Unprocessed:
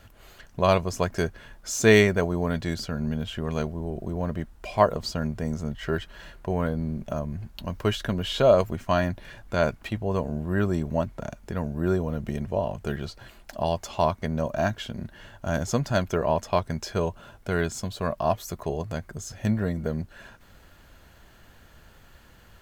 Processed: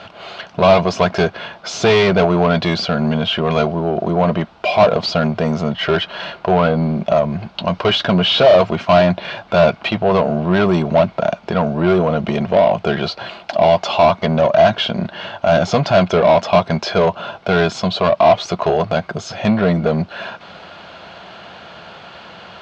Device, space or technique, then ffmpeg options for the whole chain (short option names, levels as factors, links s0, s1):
overdrive pedal into a guitar cabinet: -filter_complex "[0:a]asplit=2[s0][s1];[s1]highpass=f=720:p=1,volume=31.6,asoftclip=type=tanh:threshold=0.631[s2];[s0][s2]amix=inputs=2:normalize=0,lowpass=f=6200:p=1,volume=0.501,highpass=81,equalizer=f=180:t=q:w=4:g=8,equalizer=f=270:t=q:w=4:g=-4,equalizer=f=690:t=q:w=4:g=6,equalizer=f=1800:t=q:w=4:g=-9,lowpass=f=4400:w=0.5412,lowpass=f=4400:w=1.3066,volume=0.891"